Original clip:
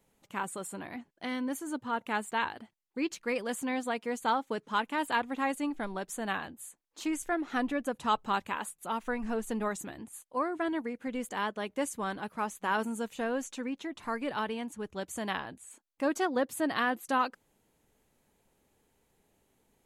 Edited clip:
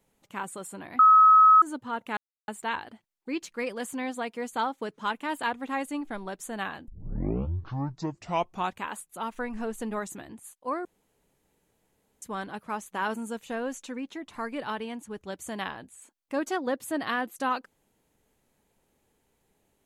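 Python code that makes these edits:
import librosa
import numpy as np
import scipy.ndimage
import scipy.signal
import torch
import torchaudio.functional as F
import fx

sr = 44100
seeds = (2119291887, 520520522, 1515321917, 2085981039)

y = fx.edit(x, sr, fx.bleep(start_s=0.99, length_s=0.63, hz=1280.0, db=-12.5),
    fx.insert_silence(at_s=2.17, length_s=0.31),
    fx.tape_start(start_s=6.57, length_s=1.92),
    fx.room_tone_fill(start_s=10.54, length_s=1.37), tone=tone)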